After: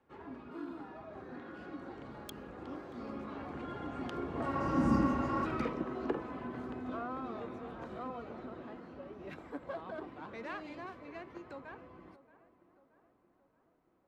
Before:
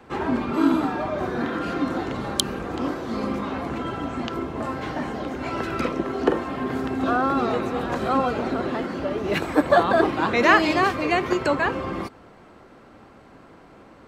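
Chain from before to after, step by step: self-modulated delay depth 0.09 ms; Doppler pass-by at 4.94, 15 m/s, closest 1.3 m; high shelf 4000 Hz -10 dB; in parallel at 0 dB: compressor, threshold -52 dBFS, peak gain reduction 21.5 dB; on the sum: spectral repair 4.55–5.43, 340–4600 Hz before; on a send: tape echo 0.627 s, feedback 58%, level -16 dB, low-pass 1800 Hz; on the sum: gain +6 dB

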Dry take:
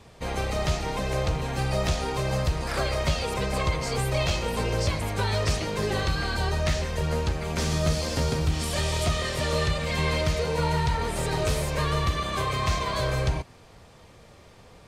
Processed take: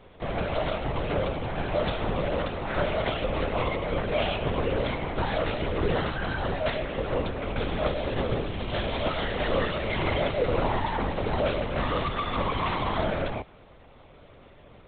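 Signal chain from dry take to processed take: HPF 260 Hz 24 dB/oct; low shelf 360 Hz +10.5 dB; LPC vocoder at 8 kHz whisper

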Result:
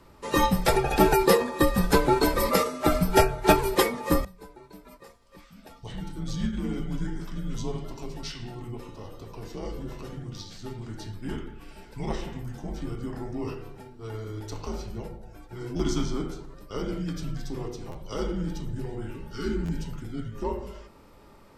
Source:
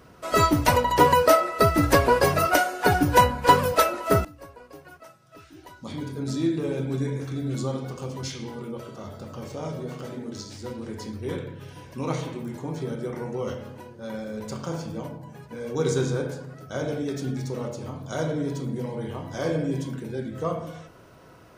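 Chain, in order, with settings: frequency shift -110 Hz; formant shift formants -2 st; spectral repair 19.11–19.76, 450–1100 Hz after; stuck buffer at 15.76/17.91/19.65, samples 512, times 2; gain -2 dB

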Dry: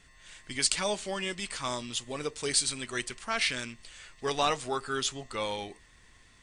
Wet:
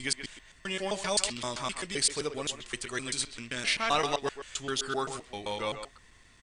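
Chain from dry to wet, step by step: slices in reverse order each 0.13 s, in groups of 5; speakerphone echo 0.13 s, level -9 dB

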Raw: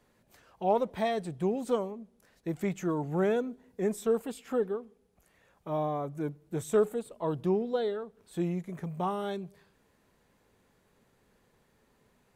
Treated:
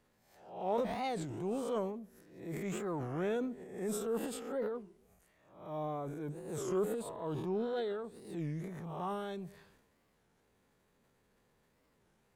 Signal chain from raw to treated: spectral swells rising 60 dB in 0.59 s; transient shaper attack -6 dB, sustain +8 dB; record warp 33 1/3 rpm, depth 250 cents; gain -7.5 dB

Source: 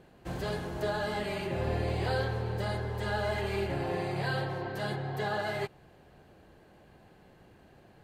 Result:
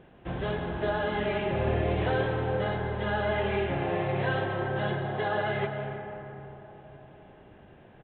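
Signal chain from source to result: on a send at -5.5 dB: reverb RT60 3.9 s, pre-delay 0.11 s; on the sum: downsampling 8000 Hz; gain +3 dB

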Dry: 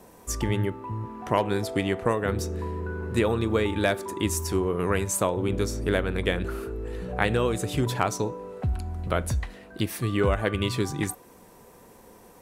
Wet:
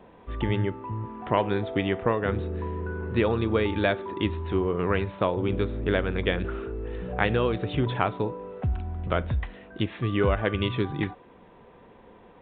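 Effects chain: downsampling 8000 Hz

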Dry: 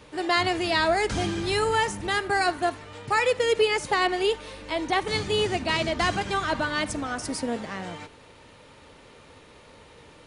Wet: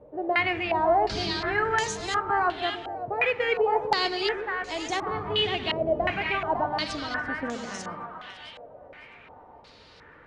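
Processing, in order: split-band echo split 640 Hz, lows 0.126 s, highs 0.554 s, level -7 dB; stepped low-pass 2.8 Hz 600–6500 Hz; gain -5.5 dB

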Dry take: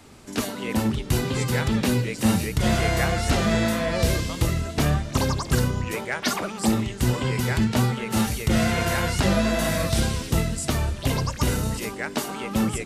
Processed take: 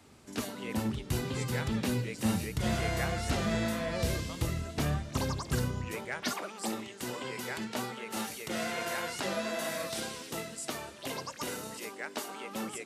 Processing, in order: HPF 49 Hz 12 dB/oct, from 6.32 s 320 Hz; gain -9 dB

